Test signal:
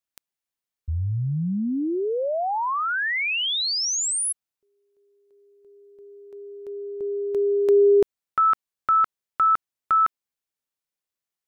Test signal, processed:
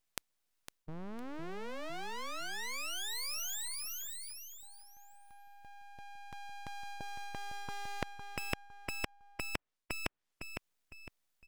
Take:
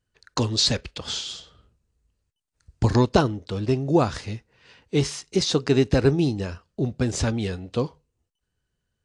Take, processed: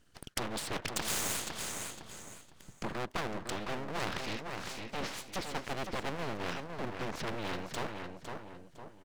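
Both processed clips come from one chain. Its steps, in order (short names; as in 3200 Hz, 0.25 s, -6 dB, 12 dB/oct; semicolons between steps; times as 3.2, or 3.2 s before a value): treble ducked by the level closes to 1300 Hz, closed at -21 dBFS; added harmonics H 2 -25 dB, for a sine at -5 dBFS; reverse; compressor 4:1, threshold -32 dBFS; reverse; full-wave rectifier; on a send: feedback echo 0.507 s, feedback 25%, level -10 dB; on the sum: spectral compressor 2:1; gain +5 dB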